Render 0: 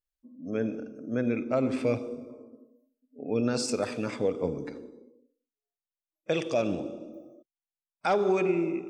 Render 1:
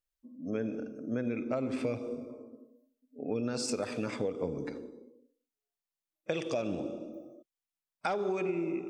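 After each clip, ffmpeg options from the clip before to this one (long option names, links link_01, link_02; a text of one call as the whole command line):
ffmpeg -i in.wav -af "acompressor=threshold=-29dB:ratio=6" out.wav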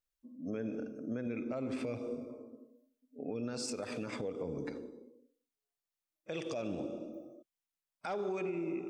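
ffmpeg -i in.wav -af "alimiter=level_in=3.5dB:limit=-24dB:level=0:latency=1:release=84,volume=-3.5dB,volume=-1.5dB" out.wav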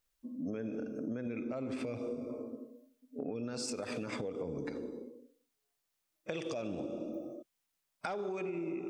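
ffmpeg -i in.wav -af "acompressor=threshold=-44dB:ratio=6,volume=8.5dB" out.wav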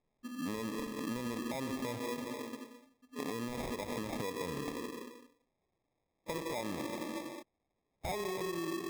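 ffmpeg -i in.wav -af "acrusher=samples=30:mix=1:aa=0.000001" out.wav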